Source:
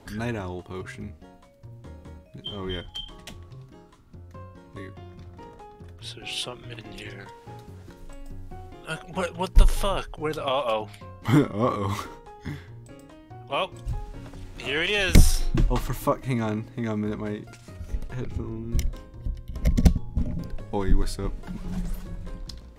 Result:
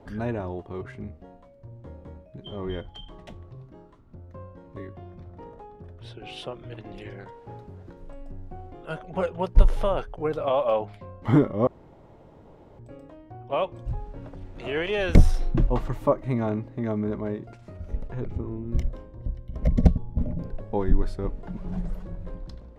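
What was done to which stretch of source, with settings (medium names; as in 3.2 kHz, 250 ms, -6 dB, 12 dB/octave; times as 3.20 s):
11.67–12.79 s: room tone
whole clip: low-pass 1.1 kHz 6 dB/octave; peaking EQ 580 Hz +5 dB 0.9 oct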